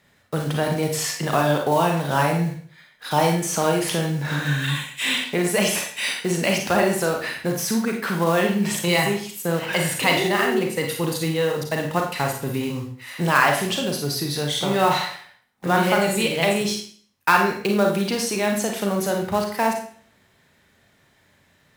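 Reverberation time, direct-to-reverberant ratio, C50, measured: 0.50 s, 1.5 dB, 5.0 dB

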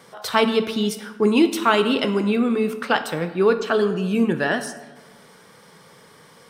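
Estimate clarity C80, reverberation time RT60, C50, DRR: 13.0 dB, 1.3 s, 11.5 dB, 8.5 dB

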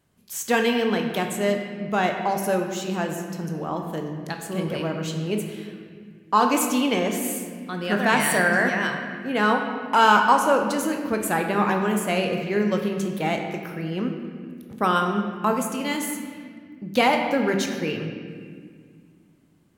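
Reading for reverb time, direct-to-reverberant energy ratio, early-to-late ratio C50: 1.9 s, 3.0 dB, 5.0 dB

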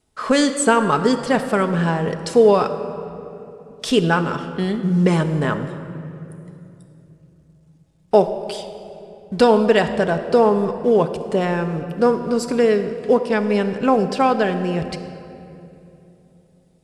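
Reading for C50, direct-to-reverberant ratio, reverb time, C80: 10.0 dB, 6.5 dB, 2.9 s, 10.5 dB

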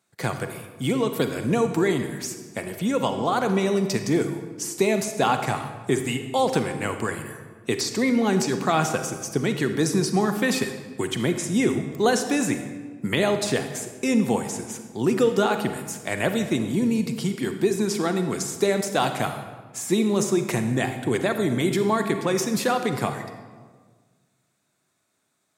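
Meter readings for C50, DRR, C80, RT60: 8.0 dB, 7.5 dB, 10.0 dB, 1.5 s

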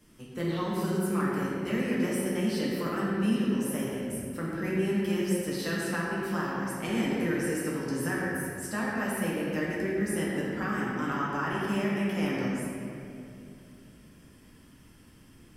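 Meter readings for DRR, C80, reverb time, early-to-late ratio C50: -6.5 dB, -1.0 dB, 2.6 s, -2.5 dB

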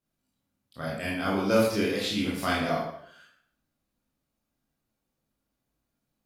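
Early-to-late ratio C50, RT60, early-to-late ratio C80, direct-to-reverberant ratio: 1.5 dB, 0.65 s, 5.0 dB, -6.0 dB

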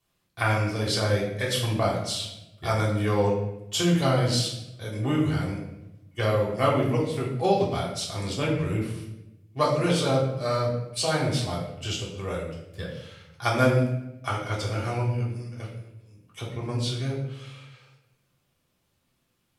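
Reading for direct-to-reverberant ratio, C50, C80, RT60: -4.5 dB, 4.5 dB, 6.5 dB, 0.90 s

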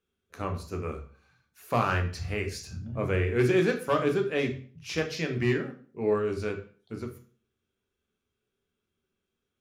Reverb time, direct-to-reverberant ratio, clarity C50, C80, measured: 0.45 s, 4.0 dB, 10.5 dB, 15.0 dB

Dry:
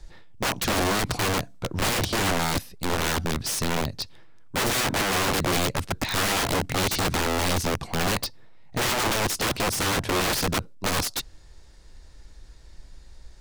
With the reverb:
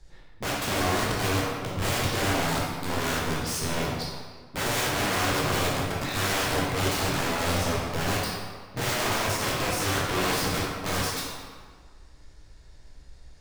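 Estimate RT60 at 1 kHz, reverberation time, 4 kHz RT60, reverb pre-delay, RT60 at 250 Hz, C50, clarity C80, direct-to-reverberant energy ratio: 1.7 s, 1.6 s, 1.2 s, 11 ms, 1.6 s, -1.0 dB, 1.5 dB, -5.5 dB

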